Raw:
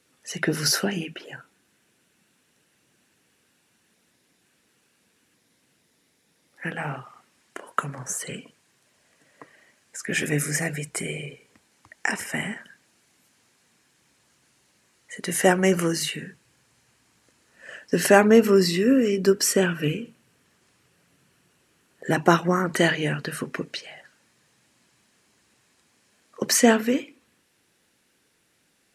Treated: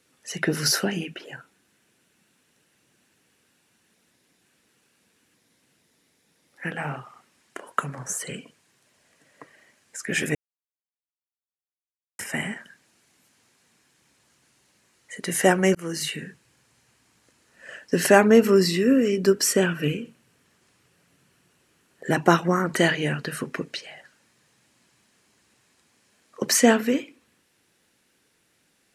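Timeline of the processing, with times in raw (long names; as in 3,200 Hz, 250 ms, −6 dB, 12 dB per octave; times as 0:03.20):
0:10.35–0:12.19: silence
0:15.75–0:16.20: fade in equal-power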